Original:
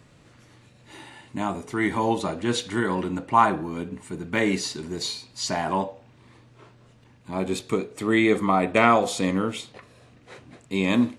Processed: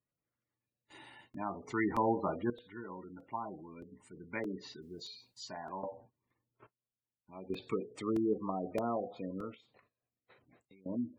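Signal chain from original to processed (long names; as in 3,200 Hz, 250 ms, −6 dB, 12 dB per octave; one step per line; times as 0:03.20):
treble cut that deepens with the level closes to 610 Hz, closed at −17 dBFS
noise gate −48 dBFS, range −25 dB
gate on every frequency bin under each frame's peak −20 dB strong
low-shelf EQ 400 Hz −6.5 dB
0:04.82–0:05.46: bit-depth reduction 12 bits, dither triangular
0:09.54–0:10.86: downward compressor 10 to 1, threshold −48 dBFS, peak gain reduction 23.5 dB
sample-and-hold tremolo 1.2 Hz, depth 80%
regular buffer underruns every 0.62 s, samples 128, repeat, from 0:00.72
level −3.5 dB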